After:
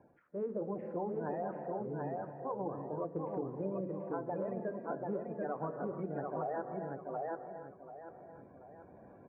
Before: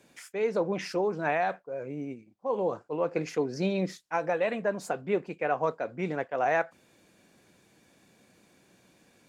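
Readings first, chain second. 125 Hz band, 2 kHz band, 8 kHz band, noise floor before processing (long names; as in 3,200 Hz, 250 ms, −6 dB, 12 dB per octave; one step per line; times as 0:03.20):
−5.0 dB, −18.5 dB, below −30 dB, −64 dBFS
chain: spectral magnitudes quantised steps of 30 dB
low-pass filter 1,200 Hz 24 dB per octave
mains-hum notches 60/120/180/240/300/360/420/480/540 Hz
on a send: repeating echo 736 ms, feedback 22%, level −4.5 dB
on the sum: reverb whose tail is shaped and stops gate 340 ms rising, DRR 10 dB
reversed playback
upward compression, threshold −39 dBFS
reversed playback
low-shelf EQ 470 Hz +4.5 dB
downward compressor, threshold −26 dBFS, peak gain reduction 7 dB
level −7.5 dB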